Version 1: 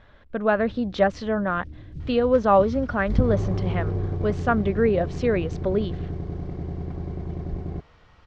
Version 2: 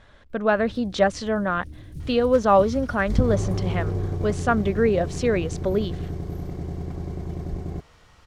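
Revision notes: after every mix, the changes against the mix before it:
master: remove high-frequency loss of the air 170 metres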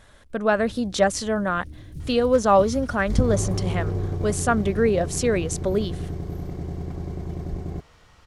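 speech: remove low-pass filter 4,200 Hz 12 dB per octave

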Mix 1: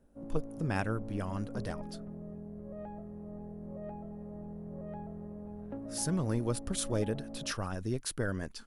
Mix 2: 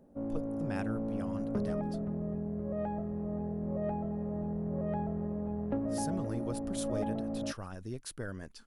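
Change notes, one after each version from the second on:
speech −6.5 dB
background +8.5 dB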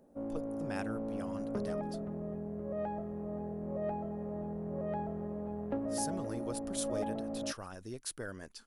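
master: add bass and treble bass −7 dB, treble +4 dB

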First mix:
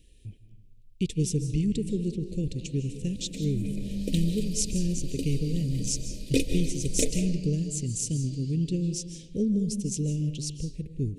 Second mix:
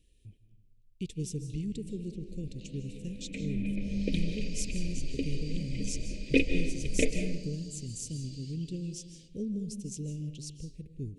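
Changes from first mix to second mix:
speech −9.0 dB
second sound: add low-pass with resonance 2,300 Hz, resonance Q 2.7

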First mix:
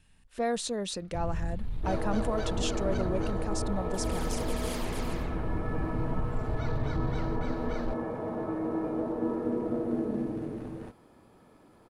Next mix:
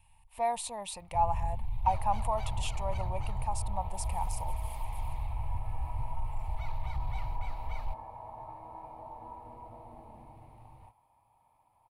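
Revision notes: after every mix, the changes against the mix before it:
second sound −11.5 dB
master: add drawn EQ curve 120 Hz 0 dB, 180 Hz −14 dB, 420 Hz −19 dB, 910 Hz +14 dB, 1,500 Hz −17 dB, 2,300 Hz +2 dB, 3,500 Hz −6 dB, 6,200 Hz −10 dB, 10,000 Hz +5 dB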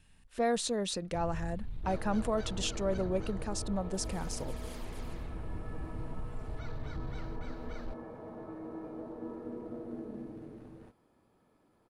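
first sound −6.5 dB
master: remove drawn EQ curve 120 Hz 0 dB, 180 Hz −14 dB, 420 Hz −19 dB, 910 Hz +14 dB, 1,500 Hz −17 dB, 2,300 Hz +2 dB, 3,500 Hz −6 dB, 6,200 Hz −10 dB, 10,000 Hz +5 dB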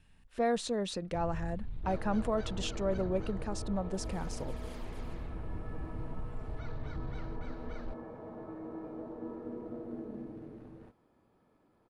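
master: add high-shelf EQ 5,000 Hz −9.5 dB

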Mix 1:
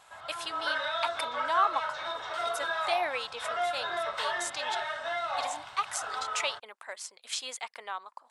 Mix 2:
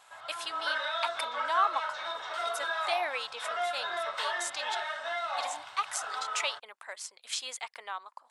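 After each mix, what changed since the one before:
master: add low-shelf EQ 320 Hz −11.5 dB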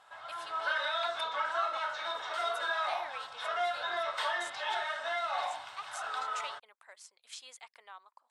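speech −12.0 dB

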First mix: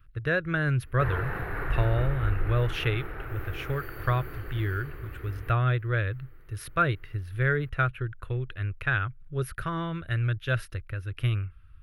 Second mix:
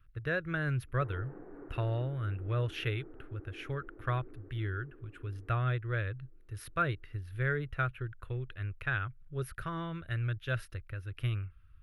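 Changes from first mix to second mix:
speech −6.5 dB
background: add four-pole ladder band-pass 320 Hz, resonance 55%

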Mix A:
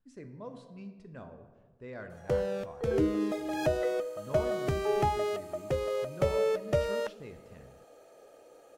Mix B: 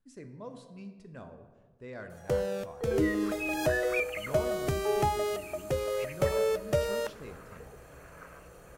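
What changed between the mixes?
second sound: unmuted
master: add high-shelf EQ 6,700 Hz +11.5 dB

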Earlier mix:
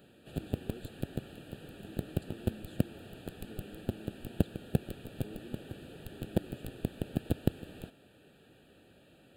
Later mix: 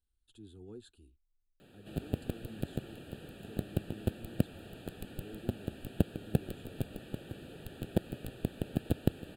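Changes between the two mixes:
speech: remove linear-phase brick-wall high-pass 170 Hz
background: entry +1.60 s

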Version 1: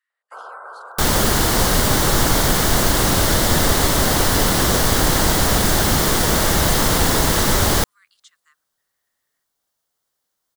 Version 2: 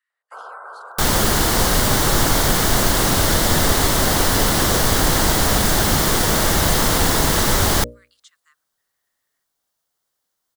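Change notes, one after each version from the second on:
master: add mains-hum notches 60/120/180/240/300/360/420/480/540/600 Hz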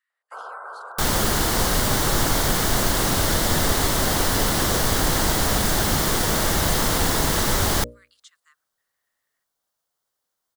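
second sound −4.0 dB

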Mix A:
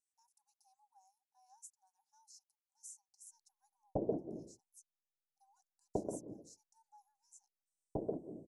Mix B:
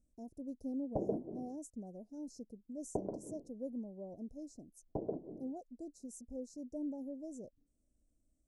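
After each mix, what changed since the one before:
speech: remove linear-phase brick-wall high-pass 770 Hz
background: entry −3.00 s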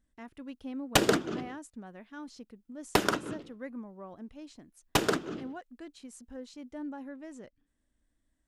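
background: remove transistor ladder low-pass 1,300 Hz, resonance 55%
master: remove elliptic band-stop filter 640–5,900 Hz, stop band 40 dB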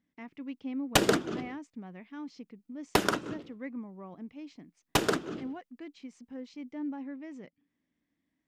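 speech: add loudspeaker in its box 150–5,500 Hz, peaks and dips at 170 Hz +8 dB, 280 Hz +4 dB, 590 Hz −4 dB, 1,500 Hz −6 dB, 2,200 Hz +8 dB, 4,000 Hz −4 dB

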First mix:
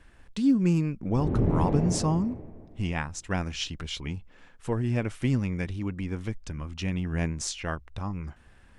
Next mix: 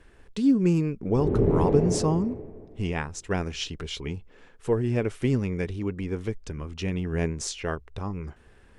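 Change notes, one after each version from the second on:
master: add parametric band 420 Hz +11 dB 0.47 octaves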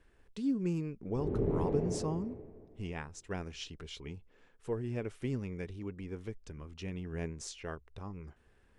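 speech −11.5 dB
background −9.5 dB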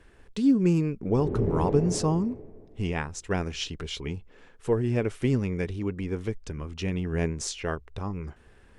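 speech +11.0 dB
background +4.0 dB

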